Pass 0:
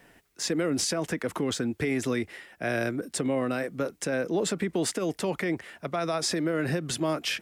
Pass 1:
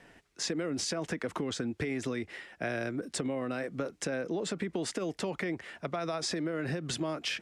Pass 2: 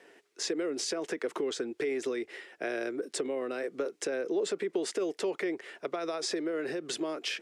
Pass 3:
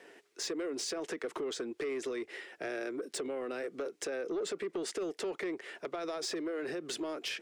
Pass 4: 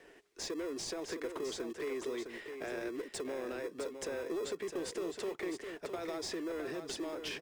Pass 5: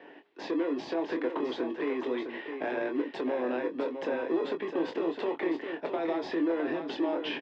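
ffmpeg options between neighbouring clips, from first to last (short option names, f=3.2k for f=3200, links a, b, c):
-af "lowpass=7.4k,acompressor=threshold=-30dB:ratio=6"
-af "highpass=f=400:t=q:w=3.8,equalizer=f=550:w=0.55:g=-5"
-filter_complex "[0:a]asplit=2[a][b];[b]acompressor=threshold=-41dB:ratio=6,volume=-1dB[c];[a][c]amix=inputs=2:normalize=0,asoftclip=type=tanh:threshold=-25.5dB,volume=-4dB"
-filter_complex "[0:a]asplit=2[a][b];[b]acrusher=samples=30:mix=1:aa=0.000001,volume=-10dB[c];[a][c]amix=inputs=2:normalize=0,aecho=1:1:659:0.422,volume=-4dB"
-filter_complex "[0:a]highpass=230,equalizer=f=280:t=q:w=4:g=7,equalizer=f=420:t=q:w=4:g=-5,equalizer=f=870:t=q:w=4:g=6,equalizer=f=1.3k:t=q:w=4:g=-6,equalizer=f=2.2k:t=q:w=4:g=-5,lowpass=f=3.1k:w=0.5412,lowpass=f=3.1k:w=1.3066,asplit=2[a][b];[b]adelay=24,volume=-6.5dB[c];[a][c]amix=inputs=2:normalize=0,volume=8.5dB"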